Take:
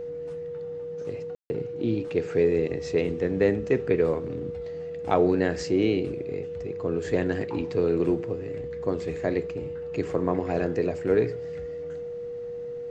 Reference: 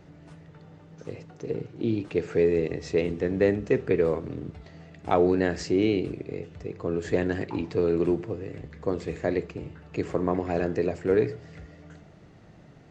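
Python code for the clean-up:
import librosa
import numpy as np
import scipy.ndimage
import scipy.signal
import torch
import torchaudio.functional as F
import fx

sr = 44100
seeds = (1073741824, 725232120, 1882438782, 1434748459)

y = fx.notch(x, sr, hz=480.0, q=30.0)
y = fx.fix_ambience(y, sr, seeds[0], print_start_s=12.39, print_end_s=12.89, start_s=1.35, end_s=1.5)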